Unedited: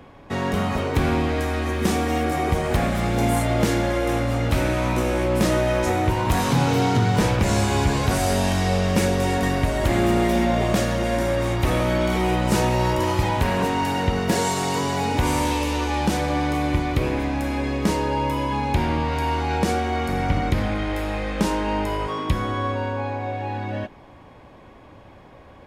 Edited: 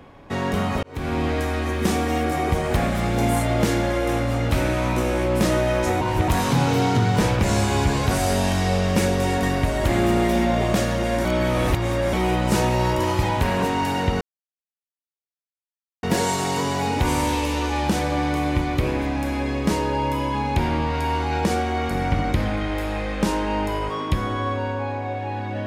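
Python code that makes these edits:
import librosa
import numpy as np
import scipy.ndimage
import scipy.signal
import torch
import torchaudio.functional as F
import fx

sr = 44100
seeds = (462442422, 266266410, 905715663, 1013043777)

y = fx.edit(x, sr, fx.fade_in_span(start_s=0.83, length_s=0.44),
    fx.reverse_span(start_s=6.01, length_s=0.27),
    fx.reverse_span(start_s=11.25, length_s=0.88),
    fx.insert_silence(at_s=14.21, length_s=1.82), tone=tone)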